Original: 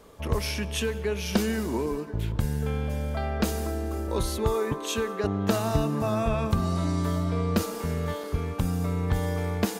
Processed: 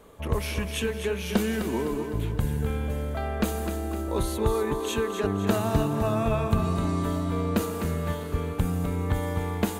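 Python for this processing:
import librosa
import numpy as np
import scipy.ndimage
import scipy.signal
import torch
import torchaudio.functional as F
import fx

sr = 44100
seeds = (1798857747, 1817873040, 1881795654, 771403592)

y = fx.peak_eq(x, sr, hz=5200.0, db=-9.0, octaves=0.47)
y = fx.echo_feedback(y, sr, ms=255, feedback_pct=47, wet_db=-8.0)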